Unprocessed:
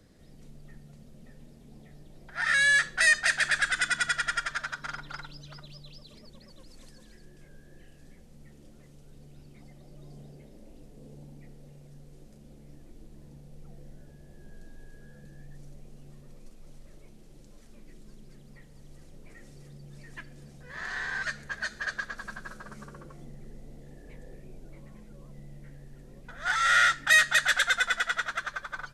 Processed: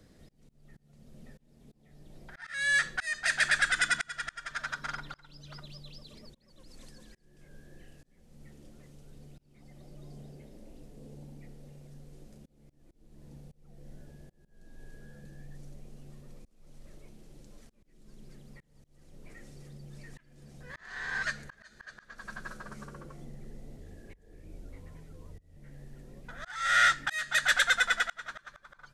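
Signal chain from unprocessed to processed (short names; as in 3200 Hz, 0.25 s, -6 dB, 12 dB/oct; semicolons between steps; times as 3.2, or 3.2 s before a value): auto swell 0.418 s; 23.77–25.57 frequency shift -55 Hz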